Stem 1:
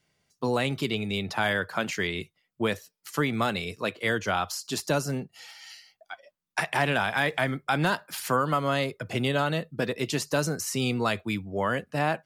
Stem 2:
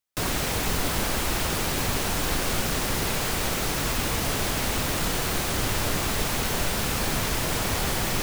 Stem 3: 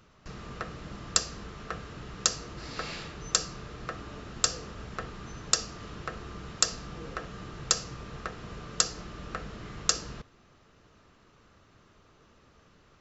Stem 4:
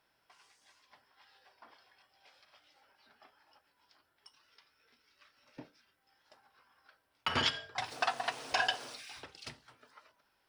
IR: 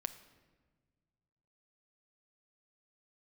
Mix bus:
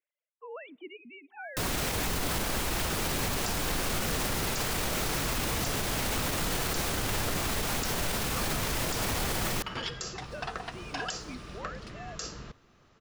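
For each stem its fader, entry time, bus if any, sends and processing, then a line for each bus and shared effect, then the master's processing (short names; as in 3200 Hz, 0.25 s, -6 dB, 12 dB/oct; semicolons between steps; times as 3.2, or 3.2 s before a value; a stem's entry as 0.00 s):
-17.5 dB, 0.00 s, send -18 dB, sine-wave speech; de-hum 392.6 Hz, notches 2; reverb removal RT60 1.7 s
+0.5 dB, 1.40 s, send -22.5 dB, dry
-2.0 dB, 2.30 s, no send, dry
-5.5 dB, 2.40 s, no send, dry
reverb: on, pre-delay 6 ms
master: limiter -21 dBFS, peak gain reduction 15.5 dB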